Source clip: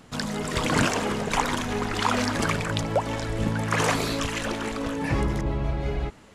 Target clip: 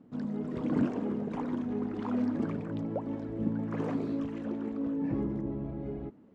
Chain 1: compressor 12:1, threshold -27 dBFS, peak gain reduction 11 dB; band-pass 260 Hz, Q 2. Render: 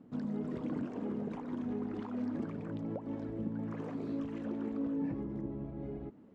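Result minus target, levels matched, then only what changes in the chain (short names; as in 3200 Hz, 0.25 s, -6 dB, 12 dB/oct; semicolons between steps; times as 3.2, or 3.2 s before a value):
compressor: peak gain reduction +11 dB
remove: compressor 12:1, threshold -27 dBFS, peak gain reduction 11 dB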